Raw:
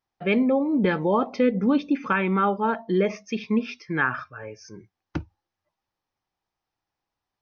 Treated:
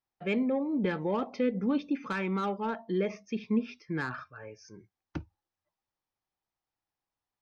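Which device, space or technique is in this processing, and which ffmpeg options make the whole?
one-band saturation: -filter_complex "[0:a]asettb=1/sr,asplit=3[link_01][link_02][link_03];[link_01]atrim=end=3.144[link_04];[link_02]atrim=start=3.14:end=4.12,asetpts=PTS-STARTPTS,afade=type=in:duration=0.004:curve=qsin,afade=type=out:start_time=0.976:duration=0.004:curve=qsin,tiltshelf=frequency=690:gain=3.5[link_05];[link_03]atrim=start=4.116[link_06];[link_04][link_05]acrossfade=duration=0.004:curve1=hsin:curve2=qsin[link_07];[link_07][link_06]acrossfade=duration=0.004:curve1=qsin:curve2=hsin,acrossover=split=580|2400[link_08][link_09][link_10];[link_09]asoftclip=type=tanh:threshold=-24dB[link_11];[link_08][link_11][link_10]amix=inputs=3:normalize=0,volume=-7.5dB"

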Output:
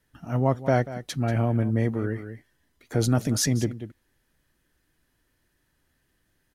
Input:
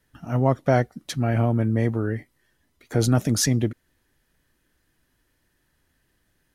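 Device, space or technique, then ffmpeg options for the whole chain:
ducked delay: -filter_complex "[0:a]asplit=3[link_01][link_02][link_03];[link_02]adelay=188,volume=-9dB[link_04];[link_03]apad=whole_len=297004[link_05];[link_04][link_05]sidechaincompress=threshold=-23dB:ratio=8:attack=20:release=410[link_06];[link_01][link_06]amix=inputs=2:normalize=0,volume=-2.5dB"

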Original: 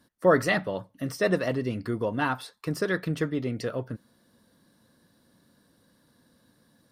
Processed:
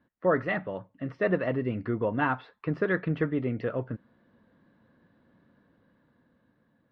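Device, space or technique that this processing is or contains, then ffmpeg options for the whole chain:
action camera in a waterproof case: -af "lowpass=frequency=2600:width=0.5412,lowpass=frequency=2600:width=1.3066,dynaudnorm=framelen=270:gausssize=9:maxgain=5dB,volume=-4.5dB" -ar 44100 -c:a aac -b:a 64k

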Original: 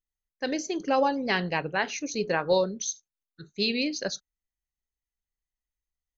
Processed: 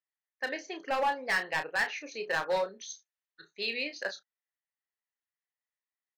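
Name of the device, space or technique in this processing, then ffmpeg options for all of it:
megaphone: -filter_complex "[0:a]asettb=1/sr,asplit=3[link_01][link_02][link_03];[link_01]atrim=end=2.904[link_04];[link_02]atrim=start=2.9:end=3.51,asetpts=PTS-STARTPTS,afade=type=in:duration=0.004:curve=qsin,afade=type=out:start_time=0.606:duration=0.004:curve=qsin,aemphasis=mode=production:type=75fm[link_05];[link_03]atrim=start=3.506[link_06];[link_04][link_05]acrossfade=duration=0.004:curve1=hsin:curve2=qsin[link_07];[link_07][link_06]acrossfade=duration=0.004:curve1=qsin:curve2=hsin,highpass=680,lowpass=2700,equalizer=frequency=1800:width_type=o:width=0.23:gain=7,asoftclip=type=hard:threshold=-24.5dB,asplit=2[link_08][link_09];[link_09]adelay=31,volume=-8dB[link_10];[link_08][link_10]amix=inputs=2:normalize=0"

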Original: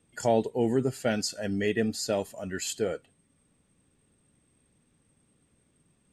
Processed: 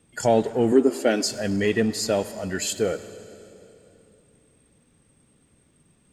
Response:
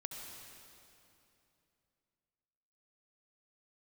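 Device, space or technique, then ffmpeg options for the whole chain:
saturated reverb return: -filter_complex "[0:a]asplit=2[link_01][link_02];[1:a]atrim=start_sample=2205[link_03];[link_02][link_03]afir=irnorm=-1:irlink=0,asoftclip=type=tanh:threshold=-32dB,volume=-5.5dB[link_04];[link_01][link_04]amix=inputs=2:normalize=0,asettb=1/sr,asplit=3[link_05][link_06][link_07];[link_05]atrim=end=0.724[link_08];[link_06]atrim=start=0.72:end=1.26,asetpts=PTS-STARTPTS,afade=type=in:duration=0.004:curve=qsin,afade=type=out:start_time=0.536:duration=0.004:curve=qsin,lowshelf=frequency=200:width_type=q:width=3:gain=-13.5[link_09];[link_07]atrim=start=1.256[link_10];[link_08][link_09]acrossfade=duration=0.004:curve1=hsin:curve2=qsin[link_11];[link_11][link_10]acrossfade=duration=0.004:curve1=qsin:curve2=hsin,volume=4dB"

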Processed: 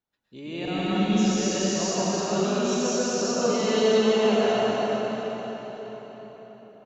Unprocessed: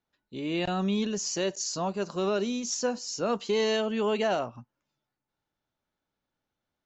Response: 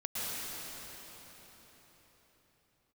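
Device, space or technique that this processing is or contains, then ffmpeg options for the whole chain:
cave: -filter_complex "[0:a]aecho=1:1:255:0.376[link_01];[1:a]atrim=start_sample=2205[link_02];[link_01][link_02]afir=irnorm=-1:irlink=0,volume=-1.5dB"

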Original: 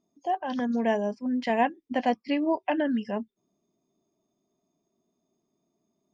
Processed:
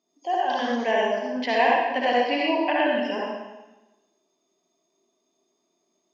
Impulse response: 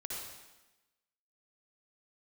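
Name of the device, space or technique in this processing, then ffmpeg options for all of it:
supermarket ceiling speaker: -filter_complex "[0:a]highpass=350,lowpass=5300[link_01];[1:a]atrim=start_sample=2205[link_02];[link_01][link_02]afir=irnorm=-1:irlink=0,asettb=1/sr,asplit=3[link_03][link_04][link_05];[link_03]atrim=end=0.914[link_06];[link_04]atrim=start=0.91:end=2.4,asetpts=PTS-STARTPTS,afade=type=in:duration=0.004:curve=qsin,afade=type=out:start_time=1.486:duration=0.004:curve=qsin,lowpass=5300[link_07];[link_05]atrim=start=2.396[link_08];[link_06][link_07]acrossfade=duration=0.004:curve1=hsin:curve2=qsin[link_09];[link_09][link_08]acrossfade=duration=0.004:curve1=qsin:curve2=hsin,highshelf=frequency=2400:gain=11.5,volume=5dB"

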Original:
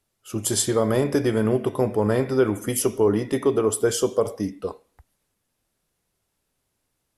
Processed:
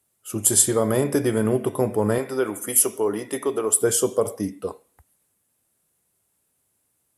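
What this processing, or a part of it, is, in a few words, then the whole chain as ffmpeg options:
budget condenser microphone: -filter_complex "[0:a]asettb=1/sr,asplit=3[link_01][link_02][link_03];[link_01]atrim=end=2.184[link_04];[link_02]atrim=start=2.18:end=3.82,asetpts=PTS-STARTPTS,afade=type=in:duration=0.004:curve=qsin,afade=type=out:start_time=1.636:duration=0.004:curve=qsin,highpass=frequency=490:poles=1[link_05];[link_03]atrim=start=3.816[link_06];[link_04][link_05]acrossfade=duration=0.004:curve1=hsin:curve2=qsin[link_07];[link_07][link_06]acrossfade=duration=0.004:curve1=qsin:curve2=hsin,highpass=74,highshelf=frequency=6800:width_type=q:width=1.5:gain=7.5"

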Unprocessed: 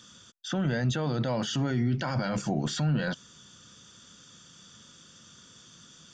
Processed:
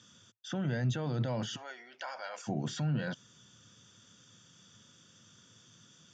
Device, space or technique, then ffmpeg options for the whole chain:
car door speaker: -filter_complex "[0:a]asplit=3[link_01][link_02][link_03];[link_01]afade=type=out:start_time=1.55:duration=0.02[link_04];[link_02]highpass=frequency=600:width=0.5412,highpass=frequency=600:width=1.3066,afade=type=in:start_time=1.55:duration=0.02,afade=type=out:start_time=2.47:duration=0.02[link_05];[link_03]afade=type=in:start_time=2.47:duration=0.02[link_06];[link_04][link_05][link_06]amix=inputs=3:normalize=0,highpass=90,equalizer=frequency=110:width_type=q:width=4:gain=9,equalizer=frequency=1200:width_type=q:width=4:gain=-3,equalizer=frequency=4300:width_type=q:width=4:gain=-5,lowpass=frequency=7600:width=0.5412,lowpass=frequency=7600:width=1.3066,volume=-6dB"

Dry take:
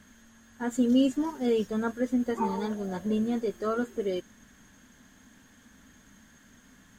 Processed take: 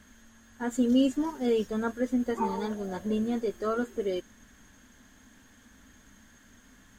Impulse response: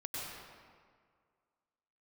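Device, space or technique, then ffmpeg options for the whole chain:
low shelf boost with a cut just above: -af "lowshelf=frequency=69:gain=5.5,equalizer=frequency=160:width_type=o:width=0.61:gain=-6"

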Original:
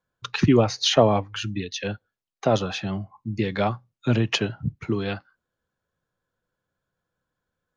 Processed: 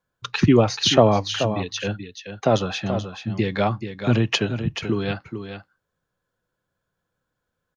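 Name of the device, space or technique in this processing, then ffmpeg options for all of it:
ducked delay: -filter_complex "[0:a]asplit=3[link_01][link_02][link_03];[link_02]adelay=432,volume=-9dB[link_04];[link_03]apad=whole_len=361283[link_05];[link_04][link_05]sidechaincompress=threshold=-20dB:ratio=8:attack=16:release=139[link_06];[link_01][link_06]amix=inputs=2:normalize=0,volume=2dB"

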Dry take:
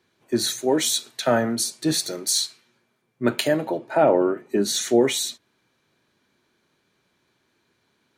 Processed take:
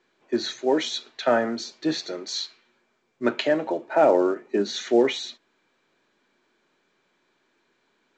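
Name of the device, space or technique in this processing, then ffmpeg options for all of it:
telephone: -af "highpass=260,lowpass=3400" -ar 16000 -c:a pcm_mulaw

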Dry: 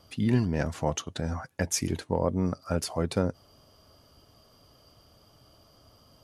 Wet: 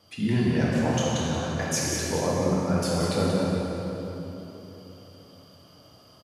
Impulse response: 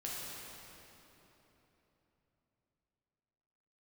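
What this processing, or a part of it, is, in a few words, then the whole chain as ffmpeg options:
PA in a hall: -filter_complex "[0:a]asettb=1/sr,asplit=3[link_01][link_02][link_03];[link_01]atrim=end=1.474[link_04];[link_02]atrim=start=1.47:end=2.06,asetpts=PTS-STARTPTS,afade=type=in:duration=0.004:curve=qsin,afade=type=out:start_time=0.586:duration=0.004:curve=qsin,highpass=330[link_05];[link_03]atrim=start=2.056[link_06];[link_04][link_05]acrossfade=duration=0.004:curve1=hsin:curve2=qsin[link_07];[link_07][link_06]acrossfade=duration=0.004:curve1=qsin:curve2=hsin,highpass=100,equalizer=frequency=2900:width_type=o:width=2.2:gain=3.5,aecho=1:1:182:0.447[link_08];[1:a]atrim=start_sample=2205[link_09];[link_08][link_09]afir=irnorm=-1:irlink=0,volume=1.5dB"

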